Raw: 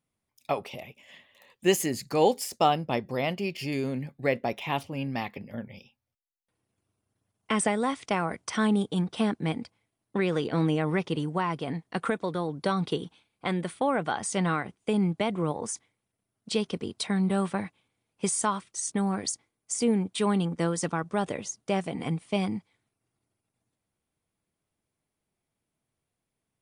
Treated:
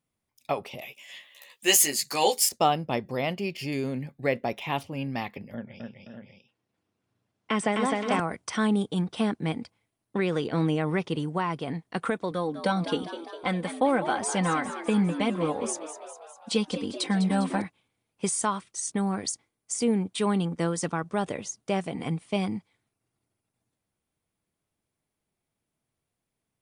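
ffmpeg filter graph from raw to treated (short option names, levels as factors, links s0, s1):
-filter_complex "[0:a]asettb=1/sr,asplit=3[s0][s1][s2];[s0]atrim=end=0.814[s3];[s1]atrim=start=0.81:end=2.49,asetpts=PTS-STARTPTS,afade=t=in:d=0.004:c=qsin,afade=t=out:st=1.676:d=0.004:c=qsin,highpass=f=660:p=1,highshelf=f=2400:g=11,asplit=2[s4][s5];[s5]adelay=14,volume=0.708[s6];[s4][s6]amix=inputs=2:normalize=0,atrim=end_sample=74088[s7];[s2]atrim=start=2.486[s8];[s3][s7]acrossfade=d=0.004:c1=hsin:c2=qsin[s9];[s9][s8]acrossfade=d=0.004:c1=qsin:c2=hsin,asettb=1/sr,asplit=3[s10][s11][s12];[s10]atrim=end=5.544[s13];[s11]atrim=start=5.54:end=8.2,asetpts=PTS-STARTPTS,afade=t=in:d=0.004:c=qsin,afade=t=out:st=2.656:d=0.004:c=qsin,highpass=110,lowpass=5900,aecho=1:1:129|258|521|596:0.126|0.708|0.316|0.398,atrim=end_sample=117306[s14];[s12]atrim=start=8.196[s15];[s13][s14]acrossfade=d=0.004:c1=hsin:c2=qsin[s16];[s16][s15]acrossfade=d=0.004:c1=qsin:c2=hsin,asettb=1/sr,asplit=3[s17][s18][s19];[s17]atrim=end=12.314[s20];[s18]atrim=start=12.31:end=17.62,asetpts=PTS-STARTPTS,afade=t=in:d=0.004:c=qsin,afade=t=out:st=5.306:d=0.004:c=qsin,aecho=1:1:3.9:0.64,atrim=end_sample=234171,asplit=8[s21][s22][s23][s24][s25][s26][s27][s28];[s22]adelay=202,afreqshift=77,volume=0.282[s29];[s23]adelay=404,afreqshift=154,volume=0.17[s30];[s24]adelay=606,afreqshift=231,volume=0.101[s31];[s25]adelay=808,afreqshift=308,volume=0.061[s32];[s26]adelay=1010,afreqshift=385,volume=0.0367[s33];[s27]adelay=1212,afreqshift=462,volume=0.0219[s34];[s28]adelay=1414,afreqshift=539,volume=0.0132[s35];[s21][s29][s30][s31][s32][s33][s34][s35]amix=inputs=8:normalize=0,atrim=end_sample=234171[s36];[s19]atrim=start=17.616[s37];[s20][s36]acrossfade=d=0.004:c1=hsin:c2=qsin[s38];[s38][s37]acrossfade=d=0.004:c1=qsin:c2=hsin"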